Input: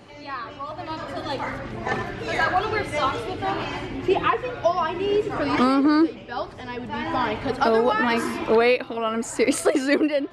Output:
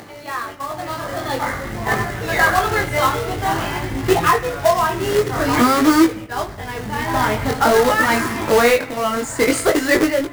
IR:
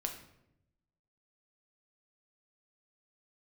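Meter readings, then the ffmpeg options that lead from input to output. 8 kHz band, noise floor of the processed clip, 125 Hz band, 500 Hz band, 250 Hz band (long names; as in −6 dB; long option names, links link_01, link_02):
can't be measured, −33 dBFS, +9.5 dB, +4.5 dB, +4.0 dB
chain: -filter_complex "[0:a]acrusher=bits=2:mode=log:mix=0:aa=0.000001,asubboost=boost=3.5:cutoff=150,agate=range=-12dB:threshold=-36dB:ratio=16:detection=peak,acompressor=mode=upward:threshold=-31dB:ratio=2.5,flanger=delay=18.5:depth=5.3:speed=0.49,lowshelf=frequency=66:gain=-10.5,asplit=2[link_01][link_02];[link_02]lowpass=frequency=2100:width_type=q:width=3.8[link_03];[1:a]atrim=start_sample=2205[link_04];[link_03][link_04]afir=irnorm=-1:irlink=0,volume=-12.5dB[link_05];[link_01][link_05]amix=inputs=2:normalize=0,volume=7dB"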